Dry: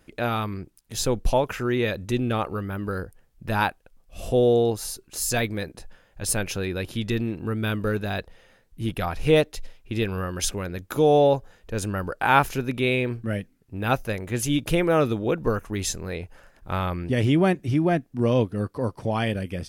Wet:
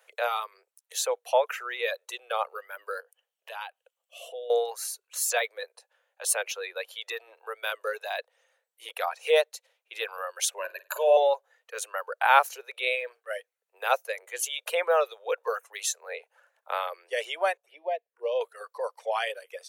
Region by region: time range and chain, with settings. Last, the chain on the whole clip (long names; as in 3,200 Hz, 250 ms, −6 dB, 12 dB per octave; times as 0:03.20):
0:03.00–0:04.50: parametric band 3,000 Hz +12 dB 0.34 octaves + downward compressor 3 to 1, threshold −36 dBFS
0:10.58–0:11.17: EQ curve with evenly spaced ripples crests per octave 1.4, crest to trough 13 dB + flutter between parallel walls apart 8.7 metres, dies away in 0.34 s
0:17.57–0:18.41: high-shelf EQ 2,500 Hz −8 dB + phaser swept by the level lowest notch 330 Hz, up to 1,400 Hz, full sweep at −20.5 dBFS
whole clip: notch filter 5,000 Hz, Q 8; reverb reduction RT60 1.7 s; Butterworth high-pass 470 Hz 72 dB per octave